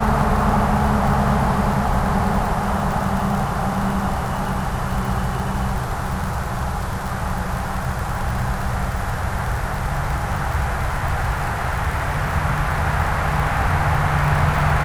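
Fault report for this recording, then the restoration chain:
crackle 58 per s -24 dBFS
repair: de-click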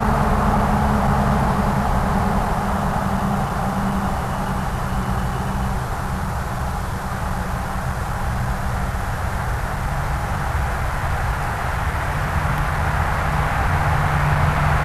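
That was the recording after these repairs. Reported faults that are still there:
nothing left

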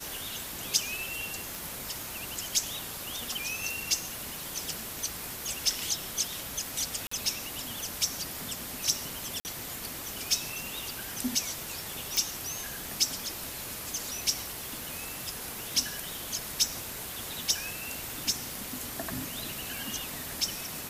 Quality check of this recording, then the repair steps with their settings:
1.55 s: pop
7.07–7.11 s: dropout 44 ms
9.40–9.45 s: dropout 49 ms
12.17 s: pop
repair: de-click; interpolate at 7.07 s, 44 ms; interpolate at 9.40 s, 49 ms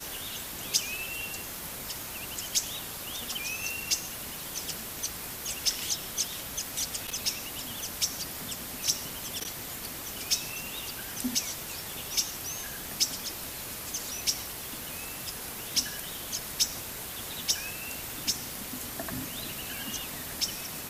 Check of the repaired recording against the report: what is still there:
nothing left

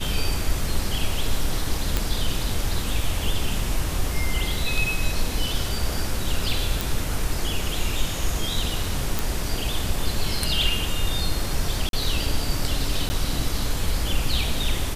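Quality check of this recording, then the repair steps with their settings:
1.97 s: pop
6.81 s: pop
9.19 s: pop
11.89–11.93 s: dropout 42 ms
13.09–13.10 s: dropout 10 ms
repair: de-click; interpolate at 11.89 s, 42 ms; interpolate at 13.09 s, 10 ms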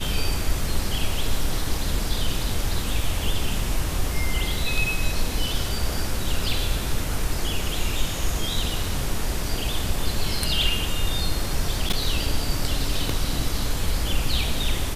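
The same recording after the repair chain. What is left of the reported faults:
nothing left

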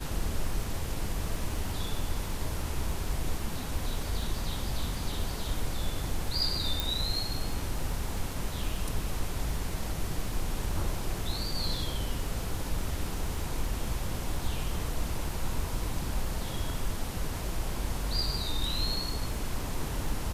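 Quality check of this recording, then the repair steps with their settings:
crackle 31 per s -38 dBFS
6.80 s: pop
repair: de-click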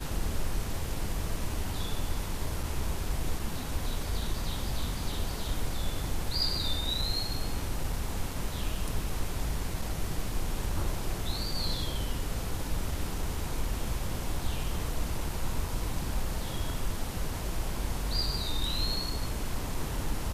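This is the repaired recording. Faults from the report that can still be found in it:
nothing left

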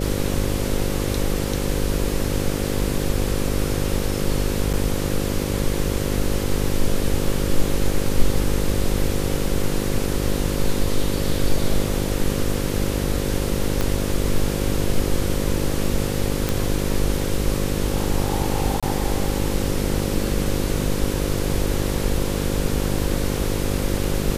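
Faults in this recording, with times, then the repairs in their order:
buzz 50 Hz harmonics 11 -25 dBFS
4.73–4.74 s: dropout 7.1 ms
13.81 s: pop -8 dBFS
16.49 s: pop
18.80–18.83 s: dropout 26 ms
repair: de-click; de-hum 50 Hz, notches 11; interpolate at 4.73 s, 7.1 ms; interpolate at 18.80 s, 26 ms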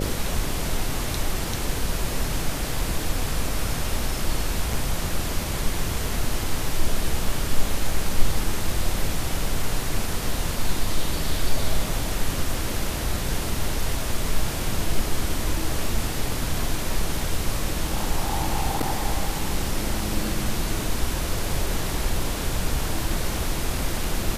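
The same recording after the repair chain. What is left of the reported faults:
13.81 s: pop

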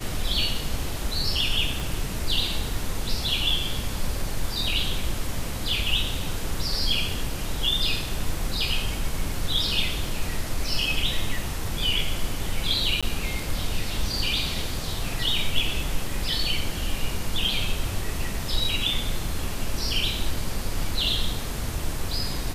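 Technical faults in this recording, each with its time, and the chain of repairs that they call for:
1.80 s: pop
13.01–13.03 s: dropout 16 ms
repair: de-click; interpolate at 13.01 s, 16 ms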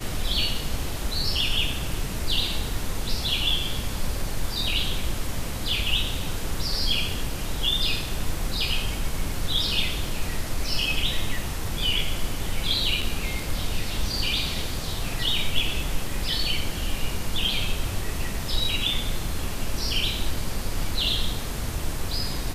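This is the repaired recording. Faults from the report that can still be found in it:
1.80 s: pop

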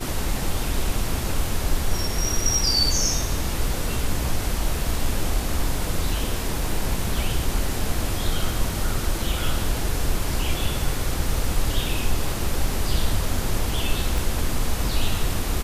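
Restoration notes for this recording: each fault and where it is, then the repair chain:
14.18 s: pop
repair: de-click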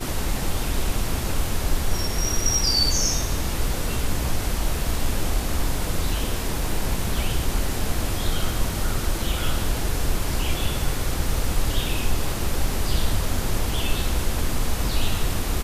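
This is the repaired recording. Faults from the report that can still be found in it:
14.18 s: pop

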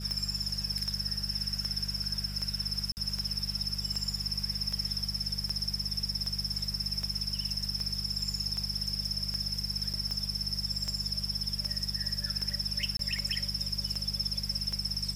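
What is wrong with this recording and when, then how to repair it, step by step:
hum 50 Hz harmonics 4 -39 dBFS
tick 78 rpm -22 dBFS
2.92–2.97 s: dropout 49 ms
9.93–9.94 s: dropout 7.3 ms
12.97–12.99 s: dropout 23 ms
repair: de-click; de-hum 50 Hz, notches 4; interpolate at 2.92 s, 49 ms; interpolate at 9.93 s, 7.3 ms; interpolate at 12.97 s, 23 ms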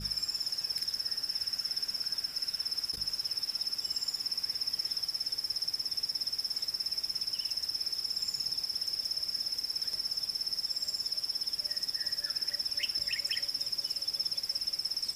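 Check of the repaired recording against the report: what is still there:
nothing left

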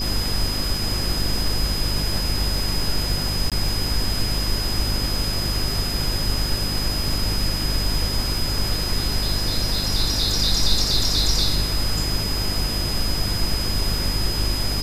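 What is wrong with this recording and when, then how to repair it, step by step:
crackle 38 per s -30 dBFS
hum 50 Hz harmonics 8 -27 dBFS
whine 5 kHz -26 dBFS
3.50–3.52 s: dropout 17 ms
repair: de-click; de-hum 50 Hz, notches 8; band-stop 5 kHz, Q 30; interpolate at 3.50 s, 17 ms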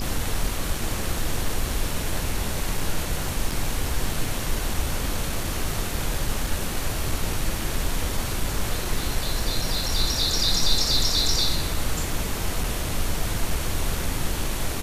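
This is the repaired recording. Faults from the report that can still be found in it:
nothing left

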